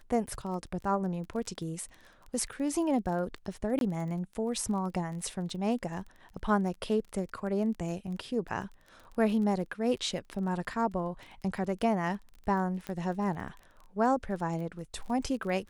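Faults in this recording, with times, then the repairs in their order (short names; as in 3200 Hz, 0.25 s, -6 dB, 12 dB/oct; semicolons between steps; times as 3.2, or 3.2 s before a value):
crackle 23/s -39 dBFS
3.79–3.81 gap 22 ms
12.87 pop -23 dBFS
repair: de-click; interpolate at 3.79, 22 ms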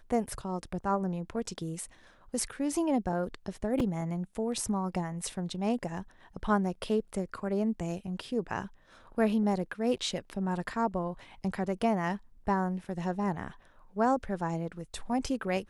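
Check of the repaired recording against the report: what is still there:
none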